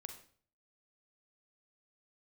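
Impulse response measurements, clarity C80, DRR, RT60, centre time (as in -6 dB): 12.0 dB, 5.5 dB, 0.50 s, 16 ms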